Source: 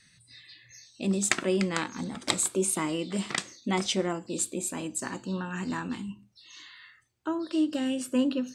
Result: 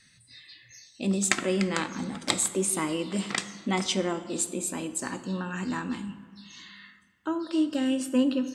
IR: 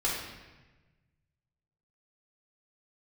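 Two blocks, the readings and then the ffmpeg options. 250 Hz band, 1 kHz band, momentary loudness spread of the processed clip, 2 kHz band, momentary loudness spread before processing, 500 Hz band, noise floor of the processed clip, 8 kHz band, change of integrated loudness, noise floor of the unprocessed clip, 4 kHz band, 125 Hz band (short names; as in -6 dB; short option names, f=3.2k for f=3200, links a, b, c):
+1.5 dB, +1.0 dB, 20 LU, +1.0 dB, 21 LU, +0.5 dB, -59 dBFS, +1.0 dB, +1.0 dB, -61 dBFS, +1.0 dB, +0.5 dB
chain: -filter_complex "[0:a]asplit=2[a][b];[1:a]atrim=start_sample=2205,asetrate=27342,aresample=44100[c];[b][c]afir=irnorm=-1:irlink=0,volume=-21.5dB[d];[a][d]amix=inputs=2:normalize=0"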